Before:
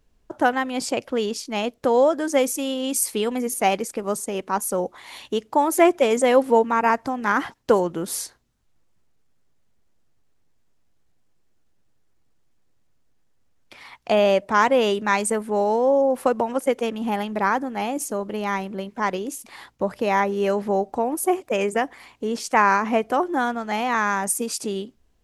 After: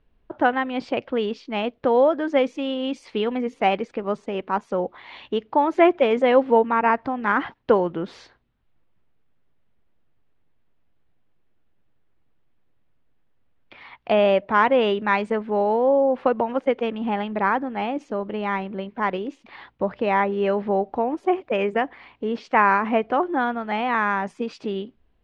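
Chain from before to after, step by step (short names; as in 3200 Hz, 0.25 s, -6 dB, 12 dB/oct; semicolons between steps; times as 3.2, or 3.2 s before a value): LPF 3400 Hz 24 dB/oct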